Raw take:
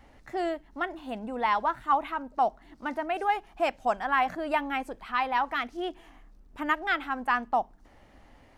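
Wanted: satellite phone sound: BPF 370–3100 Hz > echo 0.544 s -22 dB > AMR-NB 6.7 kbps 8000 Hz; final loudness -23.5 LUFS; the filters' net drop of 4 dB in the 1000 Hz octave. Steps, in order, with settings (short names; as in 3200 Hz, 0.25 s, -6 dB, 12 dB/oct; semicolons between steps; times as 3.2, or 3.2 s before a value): BPF 370–3100 Hz; bell 1000 Hz -5 dB; echo 0.544 s -22 dB; gain +10 dB; AMR-NB 6.7 kbps 8000 Hz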